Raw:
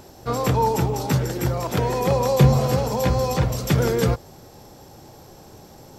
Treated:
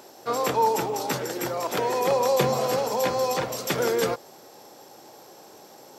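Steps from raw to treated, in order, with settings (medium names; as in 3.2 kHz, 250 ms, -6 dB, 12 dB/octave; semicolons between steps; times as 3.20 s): high-pass 360 Hz 12 dB/octave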